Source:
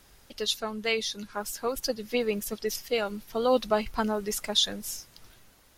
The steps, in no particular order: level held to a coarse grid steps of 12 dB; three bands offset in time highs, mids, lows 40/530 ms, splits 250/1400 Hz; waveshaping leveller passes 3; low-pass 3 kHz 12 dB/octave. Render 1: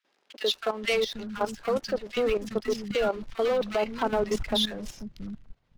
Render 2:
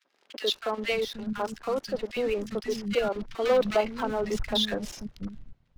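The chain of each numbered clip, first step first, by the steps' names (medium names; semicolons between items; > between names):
low-pass > waveshaping leveller > three bands offset in time > level held to a coarse grid; low-pass > level held to a coarse grid > waveshaping leveller > three bands offset in time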